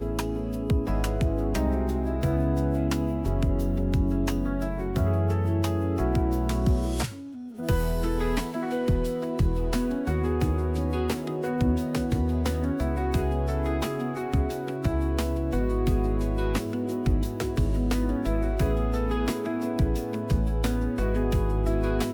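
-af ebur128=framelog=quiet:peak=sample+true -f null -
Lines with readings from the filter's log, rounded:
Integrated loudness:
  I:         -27.1 LUFS
  Threshold: -37.1 LUFS
Loudness range:
  LRA:         1.2 LU
  Threshold: -47.1 LUFS
  LRA low:   -27.7 LUFS
  LRA high:  -26.4 LUFS
Sample peak:
  Peak:      -12.7 dBFS
True peak:
  Peak:      -12.7 dBFS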